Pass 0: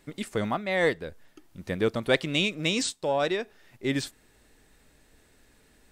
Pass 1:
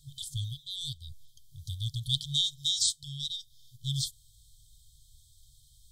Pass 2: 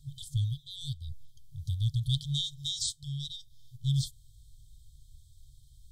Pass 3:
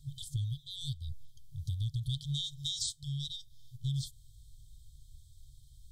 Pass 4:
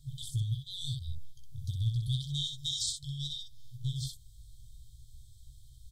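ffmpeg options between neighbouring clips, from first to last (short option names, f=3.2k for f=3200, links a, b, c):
-af "afftfilt=real='re*(1-between(b*sr/4096,140,3100))':imag='im*(1-between(b*sr/4096,140,3100))':win_size=4096:overlap=0.75,volume=4dB"
-af "tiltshelf=f=690:g=6"
-af "acompressor=threshold=-31dB:ratio=6"
-af "aecho=1:1:17|63:0.531|0.631"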